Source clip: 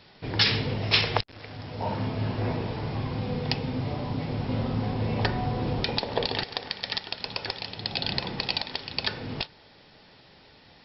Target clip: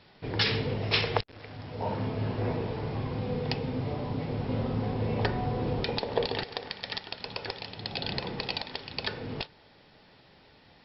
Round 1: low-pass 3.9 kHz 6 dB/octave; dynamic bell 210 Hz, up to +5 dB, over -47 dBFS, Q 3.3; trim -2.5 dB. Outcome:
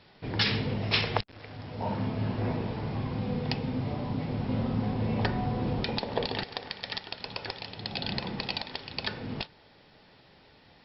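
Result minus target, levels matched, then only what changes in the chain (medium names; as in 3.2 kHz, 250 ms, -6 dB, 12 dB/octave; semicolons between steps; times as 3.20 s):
500 Hz band -3.0 dB
change: dynamic bell 450 Hz, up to +5 dB, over -47 dBFS, Q 3.3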